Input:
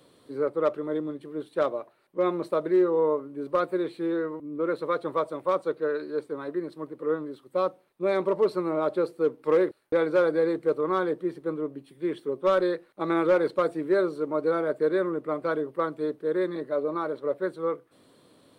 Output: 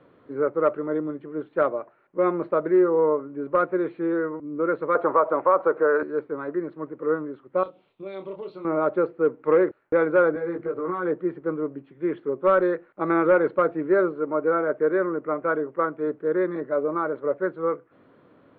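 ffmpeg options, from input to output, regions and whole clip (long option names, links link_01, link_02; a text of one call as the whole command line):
ffmpeg -i in.wav -filter_complex "[0:a]asettb=1/sr,asplit=3[link_01][link_02][link_03];[link_01]atrim=end=4.954[link_04];[link_02]atrim=start=4.95:end=6.03,asetpts=PTS-STARTPTS,afade=type=in:duration=0.004:curve=qsin,afade=type=out:start_time=1.076:duration=0.004:curve=qsin,equalizer=frequency=890:width=0.5:gain=14.5,acompressor=threshold=-21dB:ratio=2.5:attack=3.2:release=140:knee=1:detection=peak,highpass=140,lowpass=3900[link_05];[link_03]atrim=start=6.026[link_06];[link_04][link_05]acrossfade=duration=0.004:curve1=hsin:curve2=qsin[link_07];[link_07][link_06]acrossfade=duration=0.004:curve1=qsin:curve2=hsin,asettb=1/sr,asplit=3[link_08][link_09][link_10];[link_08]atrim=end=7.634[link_11];[link_09]atrim=start=7.63:end=8.65,asetpts=PTS-STARTPTS,afade=type=in:duration=0.004:curve=qsin,afade=type=out:start_time=1.016:duration=0.004:curve=qsin,highshelf=frequency=2400:width_type=q:width=3:gain=12,acompressor=threshold=-43dB:ratio=2.5:attack=3.2:release=140:knee=1:detection=peak,asplit=2[link_12][link_13];[link_13]adelay=26,volume=-5.5dB[link_14];[link_12][link_14]amix=inputs=2:normalize=0,atrim=end_sample=44982[link_15];[link_10]atrim=start=8.646[link_16];[link_11][link_15]acrossfade=duration=0.004:curve1=hsin:curve2=qsin[link_17];[link_17][link_16]acrossfade=duration=0.004:curve1=qsin:curve2=hsin,asettb=1/sr,asplit=3[link_18][link_19][link_20];[link_18]atrim=end=10.344[link_21];[link_19]atrim=start=10.34:end=11.06,asetpts=PTS-STARTPTS,afade=type=in:duration=0.004:curve=qsin,afade=type=out:start_time=0.716:duration=0.004:curve=qsin,acompressor=threshold=-28dB:ratio=12:attack=3.2:release=140:knee=1:detection=peak,asplit=2[link_22][link_23];[link_23]adelay=17,volume=-2dB[link_24];[link_22][link_24]amix=inputs=2:normalize=0,atrim=end_sample=31752[link_25];[link_20]atrim=start=11.056[link_26];[link_21][link_25]acrossfade=duration=0.004:curve1=hsin:curve2=qsin[link_27];[link_27][link_26]acrossfade=duration=0.004:curve1=qsin:curve2=hsin,asettb=1/sr,asplit=3[link_28][link_29][link_30];[link_28]atrim=end=14.124[link_31];[link_29]atrim=start=14.12:end=16.07,asetpts=PTS-STARTPTS,afade=type=in:duration=0.004:curve=qsin,afade=type=out:start_time=1.946:duration=0.004:curve=qsin,lowpass=3700,lowshelf=frequency=160:gain=-6[link_32];[link_30]atrim=start=16.066[link_33];[link_31][link_32]acrossfade=duration=0.004:curve1=hsin:curve2=qsin[link_34];[link_34][link_33]acrossfade=duration=0.004:curve1=qsin:curve2=hsin,lowpass=frequency=2300:width=0.5412,lowpass=frequency=2300:width=1.3066,equalizer=frequency=1400:width=5.5:gain=5,volume=3dB" out.wav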